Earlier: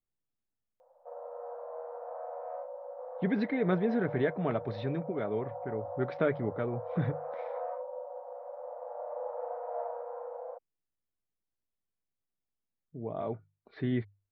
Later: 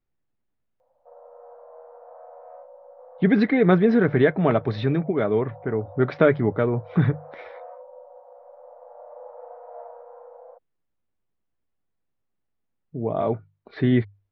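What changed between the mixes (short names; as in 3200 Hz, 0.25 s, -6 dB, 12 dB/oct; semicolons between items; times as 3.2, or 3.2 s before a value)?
speech +11.5 dB; background -4.0 dB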